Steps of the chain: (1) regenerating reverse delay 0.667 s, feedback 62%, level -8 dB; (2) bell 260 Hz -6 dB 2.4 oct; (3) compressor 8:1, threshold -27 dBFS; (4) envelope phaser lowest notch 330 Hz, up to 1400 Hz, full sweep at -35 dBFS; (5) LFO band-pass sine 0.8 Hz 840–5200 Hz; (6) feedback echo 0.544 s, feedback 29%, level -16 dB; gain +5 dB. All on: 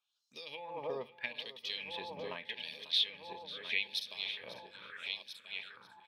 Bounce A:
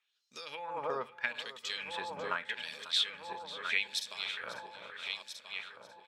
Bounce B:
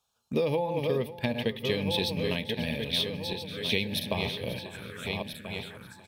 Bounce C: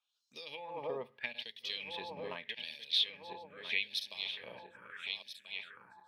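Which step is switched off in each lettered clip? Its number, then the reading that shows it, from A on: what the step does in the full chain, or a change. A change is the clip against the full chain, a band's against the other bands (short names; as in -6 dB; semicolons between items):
4, 8 kHz band +9.5 dB; 5, 125 Hz band +17.0 dB; 6, momentary loudness spread change +1 LU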